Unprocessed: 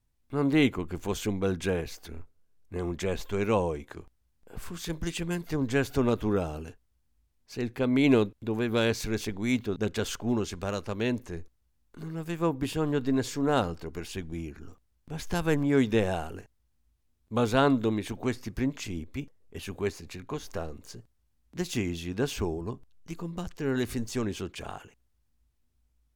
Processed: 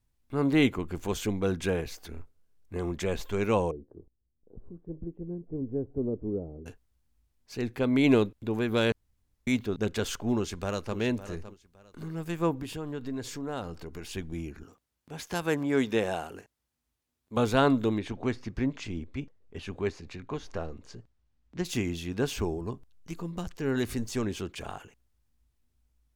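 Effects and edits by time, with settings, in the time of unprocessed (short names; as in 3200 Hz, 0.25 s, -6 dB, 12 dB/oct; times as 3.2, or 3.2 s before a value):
3.71–6.66 ladder low-pass 540 Hz, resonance 30%
8.92–9.47 room tone
10.35–10.97 echo throw 0.56 s, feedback 25%, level -13 dB
12.61–14.11 compressor 2:1, threshold -38 dBFS
14.63–17.37 HPF 270 Hz 6 dB/oct
17.98–21.65 air absorption 95 m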